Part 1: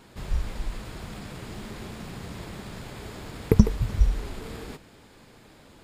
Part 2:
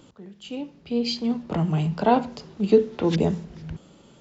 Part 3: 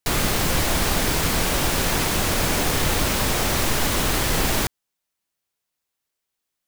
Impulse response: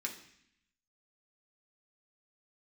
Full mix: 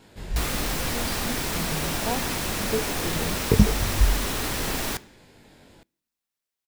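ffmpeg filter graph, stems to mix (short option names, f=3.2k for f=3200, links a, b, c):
-filter_complex "[0:a]bandreject=f=1.2k:w=5.4,flanger=delay=19:depth=2.4:speed=0.61,volume=2.5dB,asplit=2[a][b];[b]volume=-22.5dB[c];[1:a]volume=-11dB[d];[2:a]adelay=300,volume=-7.5dB,asplit=2[e][f];[f]volume=-11.5dB[g];[3:a]atrim=start_sample=2205[h];[c][g]amix=inputs=2:normalize=0[i];[i][h]afir=irnorm=-1:irlink=0[j];[a][d][e][j]amix=inputs=4:normalize=0"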